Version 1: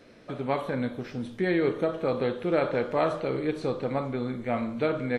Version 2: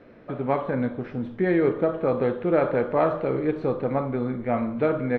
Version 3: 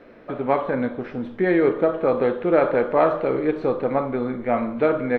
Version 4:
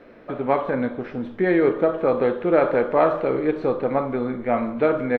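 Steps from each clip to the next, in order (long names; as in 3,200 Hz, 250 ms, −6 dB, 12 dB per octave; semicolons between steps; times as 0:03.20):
low-pass filter 1,800 Hz 12 dB per octave; level +4 dB
parametric band 110 Hz −9 dB 1.8 octaves; level +4.5 dB
far-end echo of a speakerphone 150 ms, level −25 dB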